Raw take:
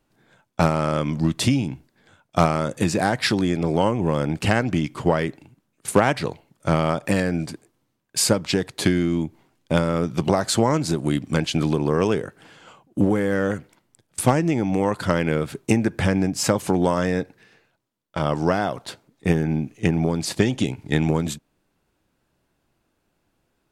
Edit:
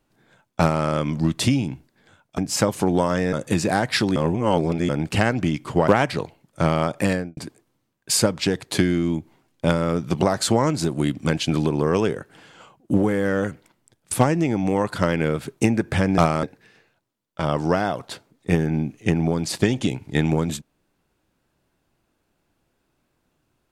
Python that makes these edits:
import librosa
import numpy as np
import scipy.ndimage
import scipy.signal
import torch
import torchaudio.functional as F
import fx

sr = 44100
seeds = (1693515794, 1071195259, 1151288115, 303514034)

y = fx.studio_fade_out(x, sr, start_s=7.17, length_s=0.27)
y = fx.edit(y, sr, fx.swap(start_s=2.38, length_s=0.25, other_s=16.25, other_length_s=0.95),
    fx.reverse_span(start_s=3.46, length_s=0.73),
    fx.cut(start_s=5.18, length_s=0.77), tone=tone)